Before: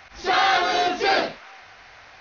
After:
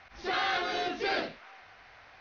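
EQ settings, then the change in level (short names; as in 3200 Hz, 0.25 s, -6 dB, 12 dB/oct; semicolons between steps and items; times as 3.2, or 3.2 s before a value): dynamic EQ 840 Hz, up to -6 dB, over -34 dBFS, Q 1; air absorption 110 m; -6.5 dB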